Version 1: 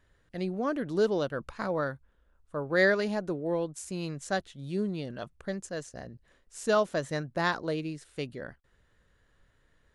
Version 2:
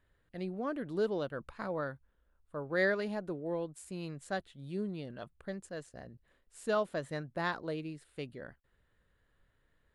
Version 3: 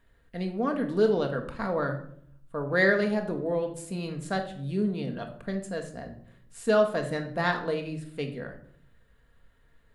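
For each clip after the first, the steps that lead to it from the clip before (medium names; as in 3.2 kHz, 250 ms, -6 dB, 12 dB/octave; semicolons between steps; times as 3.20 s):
peaking EQ 6 kHz -10 dB 0.54 oct; trim -6 dB
simulated room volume 1000 m³, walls furnished, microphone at 1.7 m; trim +6.5 dB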